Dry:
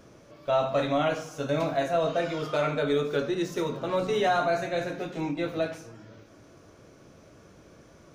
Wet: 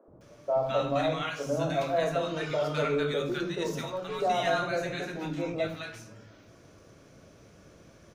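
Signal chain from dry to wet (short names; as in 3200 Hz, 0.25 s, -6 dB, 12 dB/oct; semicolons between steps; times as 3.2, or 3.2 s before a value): 3.82–4.22 bell 250 Hz -9.5 dB 2.7 oct; three bands offset in time mids, lows, highs 80/210 ms, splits 320/1000 Hz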